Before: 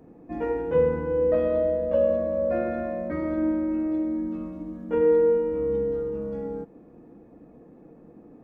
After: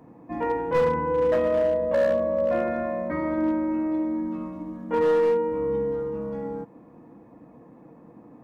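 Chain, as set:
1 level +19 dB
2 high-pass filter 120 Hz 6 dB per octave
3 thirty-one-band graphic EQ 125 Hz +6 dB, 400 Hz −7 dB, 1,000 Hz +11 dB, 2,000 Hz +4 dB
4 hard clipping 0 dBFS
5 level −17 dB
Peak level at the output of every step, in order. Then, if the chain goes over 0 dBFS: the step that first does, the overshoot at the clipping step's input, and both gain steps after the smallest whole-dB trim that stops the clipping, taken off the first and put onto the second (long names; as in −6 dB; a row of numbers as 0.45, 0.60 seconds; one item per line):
+8.0, +7.5, +7.5, 0.0, −17.0 dBFS
step 1, 7.5 dB
step 1 +11 dB, step 5 −9 dB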